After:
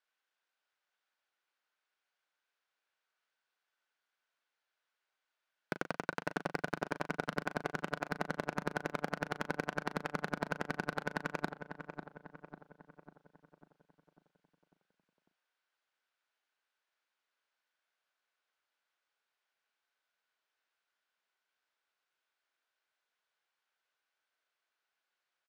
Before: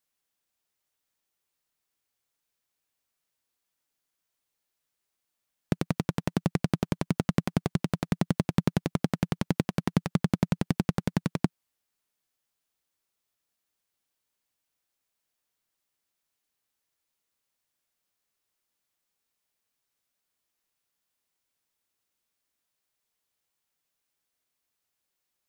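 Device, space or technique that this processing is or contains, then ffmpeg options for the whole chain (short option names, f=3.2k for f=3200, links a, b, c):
megaphone: -filter_complex "[0:a]highpass=550,lowpass=3.5k,equalizer=f=1.5k:t=o:w=0.21:g=8.5,asoftclip=type=hard:threshold=-21.5dB,asplit=2[a][b];[b]adelay=38,volume=-12.5dB[c];[a][c]amix=inputs=2:normalize=0,asplit=2[d][e];[e]adelay=547,lowpass=f=1.8k:p=1,volume=-8dB,asplit=2[f][g];[g]adelay=547,lowpass=f=1.8k:p=1,volume=0.55,asplit=2[h][i];[i]adelay=547,lowpass=f=1.8k:p=1,volume=0.55,asplit=2[j][k];[k]adelay=547,lowpass=f=1.8k:p=1,volume=0.55,asplit=2[l][m];[m]adelay=547,lowpass=f=1.8k:p=1,volume=0.55,asplit=2[n][o];[o]adelay=547,lowpass=f=1.8k:p=1,volume=0.55,asplit=2[p][q];[q]adelay=547,lowpass=f=1.8k:p=1,volume=0.55[r];[d][f][h][j][l][n][p][r]amix=inputs=8:normalize=0,volume=1dB"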